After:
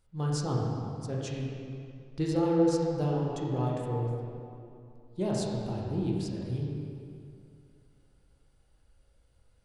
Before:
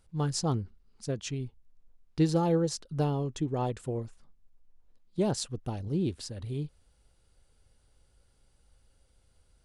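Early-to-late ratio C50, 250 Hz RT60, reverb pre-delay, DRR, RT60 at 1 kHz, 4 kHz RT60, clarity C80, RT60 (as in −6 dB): −1.5 dB, 2.5 s, 14 ms, −4.0 dB, 2.5 s, 1.9 s, 0.0 dB, 2.5 s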